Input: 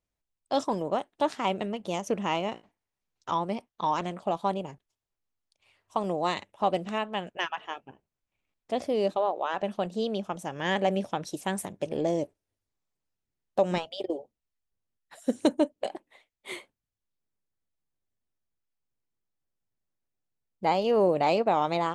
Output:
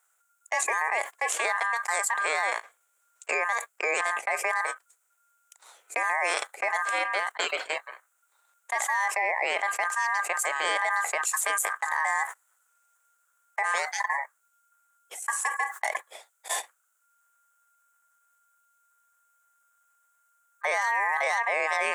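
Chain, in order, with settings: ring modulator 1.4 kHz; resonant high shelf 6 kHz +8 dB, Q 3; gate -41 dBFS, range -29 dB; high-pass 470 Hz 24 dB/octave; peak limiter -22.5 dBFS, peak gain reduction 10.5 dB; level flattener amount 70%; trim +4.5 dB

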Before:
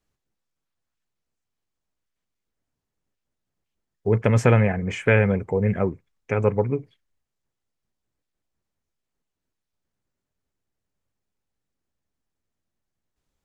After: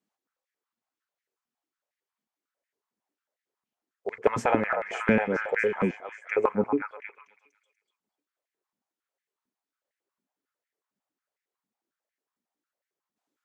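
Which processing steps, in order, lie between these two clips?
repeats whose band climbs or falls 242 ms, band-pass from 1 kHz, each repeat 0.7 oct, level -2 dB; step-sequenced high-pass 11 Hz 220–1900 Hz; trim -6.5 dB

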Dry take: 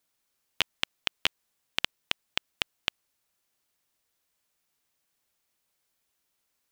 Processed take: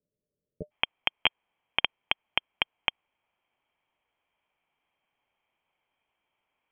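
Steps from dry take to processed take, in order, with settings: rippled Chebyshev low-pass 620 Hz, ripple 9 dB, from 0.70 s 3.3 kHz; trim +8.5 dB

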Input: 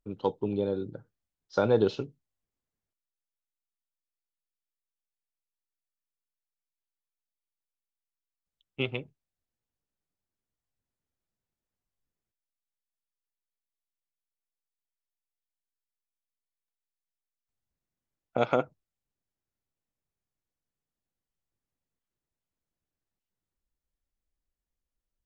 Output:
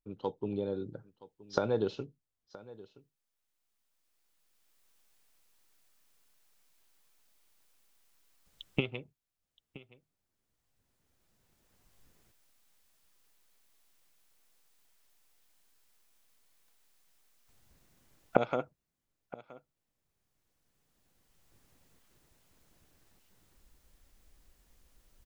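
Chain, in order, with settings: recorder AGC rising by 10 dB/s; on a send: delay 972 ms -19.5 dB; on the sum: trim -7 dB

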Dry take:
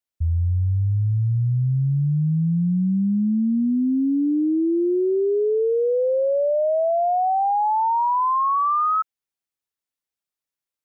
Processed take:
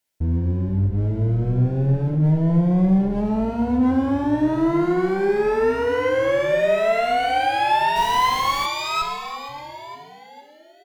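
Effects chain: de-hum 49.59 Hz, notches 5; in parallel at +2 dB: peak limiter -26 dBFS, peak gain reduction 11.5 dB; on the sum: one-sided clip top -32.5 dBFS, bottom -17.5 dBFS; on a send: frequency-shifting echo 463 ms, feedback 46%, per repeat -140 Hz, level -12.5 dB; on the sum: saturation -18 dBFS, distortion -24 dB; gated-style reverb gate 380 ms falling, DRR 3 dB; 7.95–8.65 s: added noise pink -38 dBFS; Butterworth band-stop 1.2 kHz, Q 7.5; trim +3 dB

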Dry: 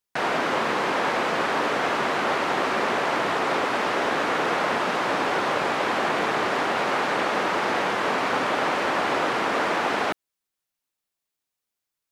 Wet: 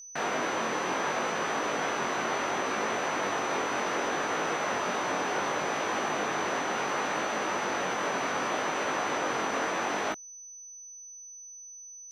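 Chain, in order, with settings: in parallel at 0 dB: peak limiter -19.5 dBFS, peak gain reduction 8 dB; on the sum: vibrato 0.72 Hz 9 cents; chorus 0.68 Hz, delay 18.5 ms, depth 4 ms; whistle 6 kHz -36 dBFS; trim -7.5 dB

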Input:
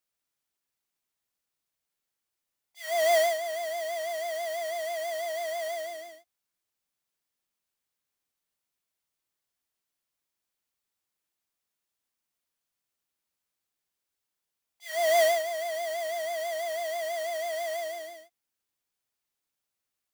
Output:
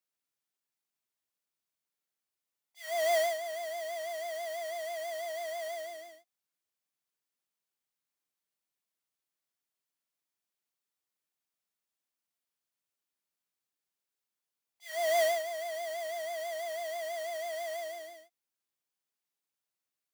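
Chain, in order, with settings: high-pass 120 Hz; trim -5 dB

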